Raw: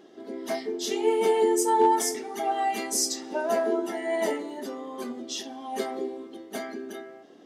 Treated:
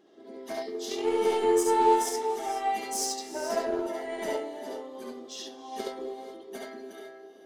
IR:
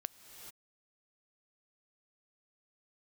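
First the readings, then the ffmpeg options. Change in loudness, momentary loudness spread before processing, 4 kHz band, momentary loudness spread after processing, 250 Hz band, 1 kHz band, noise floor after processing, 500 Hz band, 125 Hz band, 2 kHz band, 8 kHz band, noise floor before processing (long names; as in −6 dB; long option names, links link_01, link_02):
−2.0 dB, 16 LU, −3.5 dB, 19 LU, −3.5 dB, −1.5 dB, −50 dBFS, −2.0 dB, can't be measured, −4.0 dB, −4.5 dB, −50 dBFS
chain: -filter_complex "[0:a]aeval=exprs='0.266*(cos(1*acos(clip(val(0)/0.266,-1,1)))-cos(1*PI/2))+0.00841*(cos(2*acos(clip(val(0)/0.266,-1,1)))-cos(2*PI/2))+0.0133*(cos(7*acos(clip(val(0)/0.266,-1,1)))-cos(7*PI/2))':channel_layout=same,asplit=2[link_01][link_02];[link_02]equalizer=frequency=250:width_type=o:width=1:gain=-6,equalizer=frequency=500:width_type=o:width=1:gain=9,equalizer=frequency=1000:width_type=o:width=1:gain=4,equalizer=frequency=4000:width_type=o:width=1:gain=7[link_03];[1:a]atrim=start_sample=2205,adelay=69[link_04];[link_03][link_04]afir=irnorm=-1:irlink=0,volume=-1.5dB[link_05];[link_01][link_05]amix=inputs=2:normalize=0,volume=-5.5dB"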